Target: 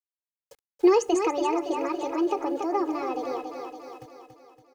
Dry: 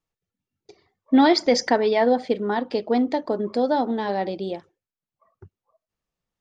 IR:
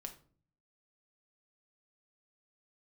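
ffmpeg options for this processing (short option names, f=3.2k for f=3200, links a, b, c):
-filter_complex "[0:a]asplit=2[a][b];[1:a]atrim=start_sample=2205[c];[b][c]afir=irnorm=-1:irlink=0,volume=-14.5dB[d];[a][d]amix=inputs=2:normalize=0,acrusher=bits=7:mix=0:aa=0.000001,aecho=1:1:381|762|1143|1524|1905|2286|2667:0.422|0.228|0.123|0.0664|0.0359|0.0194|0.0105,acrossover=split=400[e][f];[f]acompressor=threshold=-29dB:ratio=2[g];[e][g]amix=inputs=2:normalize=0,aecho=1:1:3.2:0.74,asetrate=59535,aresample=44100,adynamicequalizer=threshold=0.00562:dfrequency=4400:dqfactor=0.7:tfrequency=4400:tqfactor=0.7:attack=5:release=100:ratio=0.375:range=3.5:mode=cutabove:tftype=highshelf,volume=-5.5dB"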